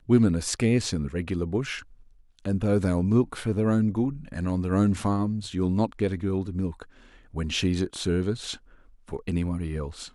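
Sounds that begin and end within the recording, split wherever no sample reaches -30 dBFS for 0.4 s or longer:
2.45–6.82 s
7.36–8.54 s

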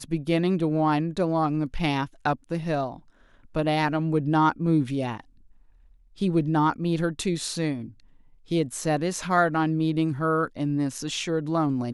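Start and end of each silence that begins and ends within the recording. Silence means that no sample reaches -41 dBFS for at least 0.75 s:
5.20–6.18 s

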